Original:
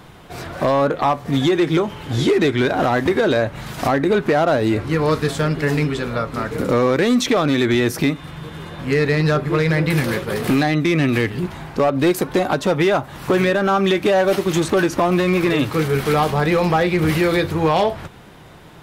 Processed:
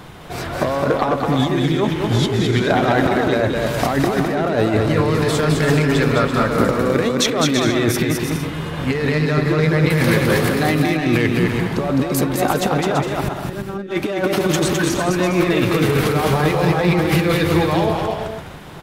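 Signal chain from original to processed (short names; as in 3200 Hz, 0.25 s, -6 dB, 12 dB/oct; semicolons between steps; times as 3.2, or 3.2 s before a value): 13.23–13.91 resonant low shelf 490 Hz +8.5 dB, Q 1.5; negative-ratio compressor -19 dBFS, ratio -0.5; bouncing-ball echo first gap 0.21 s, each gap 0.6×, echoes 5; gain +1 dB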